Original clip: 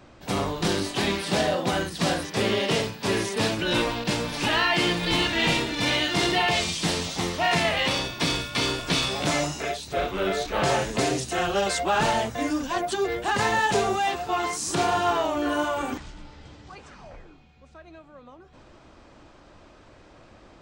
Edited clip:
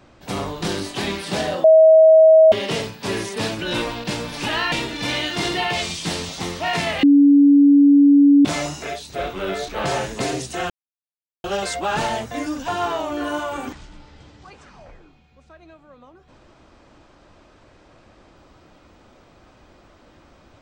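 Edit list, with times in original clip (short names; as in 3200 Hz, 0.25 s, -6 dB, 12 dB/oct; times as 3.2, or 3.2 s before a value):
1.64–2.52 bleep 638 Hz -6.5 dBFS
4.72–5.5 cut
7.81–9.23 bleep 284 Hz -8 dBFS
11.48 insert silence 0.74 s
12.72–14.93 cut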